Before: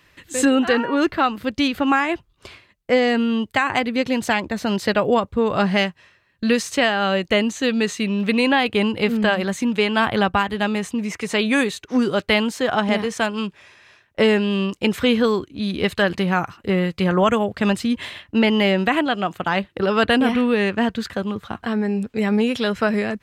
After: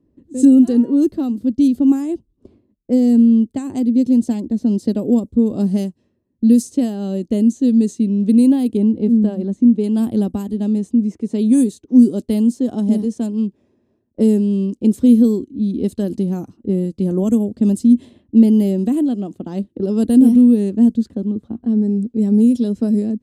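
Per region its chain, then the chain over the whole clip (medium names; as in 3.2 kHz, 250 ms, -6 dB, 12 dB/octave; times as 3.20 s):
8.77–9.84 s: low-pass 1.9 kHz 6 dB/octave + tape noise reduction on one side only decoder only
whole clip: level-controlled noise filter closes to 1.2 kHz, open at -13.5 dBFS; FFT filter 160 Hz 0 dB, 240 Hz +14 dB, 1.4 kHz -25 dB, 2.3 kHz -24 dB, 10 kHz +13 dB; trim -3 dB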